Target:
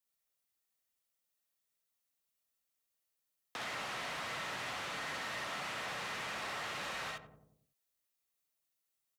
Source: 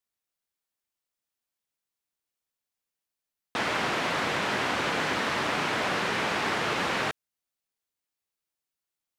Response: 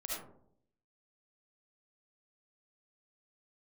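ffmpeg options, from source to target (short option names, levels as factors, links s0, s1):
-filter_complex "[0:a]acrossover=split=180[s0][s1];[s1]acompressor=threshold=0.0158:ratio=4[s2];[s0][s2]amix=inputs=2:normalize=0,asplit=2[s3][s4];[s4]adelay=91,lowpass=f=840:p=1,volume=0.335,asplit=2[s5][s6];[s6]adelay=91,lowpass=f=840:p=1,volume=0.55,asplit=2[s7][s8];[s8]adelay=91,lowpass=f=840:p=1,volume=0.55,asplit=2[s9][s10];[s10]adelay=91,lowpass=f=840:p=1,volume=0.55,asplit=2[s11][s12];[s12]adelay=91,lowpass=f=840:p=1,volume=0.55,asplit=2[s13][s14];[s14]adelay=91,lowpass=f=840:p=1,volume=0.55[s15];[s3][s5][s7][s9][s11][s13][s15]amix=inputs=7:normalize=0,acrossover=split=590|3400[s16][s17][s18];[s16]acompressor=threshold=0.00398:ratio=6[s19];[s19][s17][s18]amix=inputs=3:normalize=0[s20];[1:a]atrim=start_sample=2205,atrim=end_sample=3087[s21];[s20][s21]afir=irnorm=-1:irlink=0,asoftclip=type=tanh:threshold=0.015,highpass=50,highshelf=f=7600:g=6,volume=1.26"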